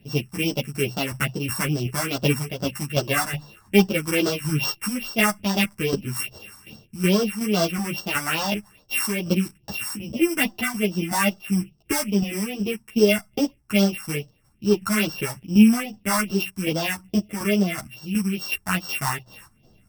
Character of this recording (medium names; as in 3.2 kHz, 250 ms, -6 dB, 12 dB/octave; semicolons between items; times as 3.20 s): a buzz of ramps at a fixed pitch in blocks of 16 samples; phasing stages 4, 2.4 Hz, lowest notch 450–2300 Hz; tremolo saw down 2.7 Hz, depth 60%; a shimmering, thickened sound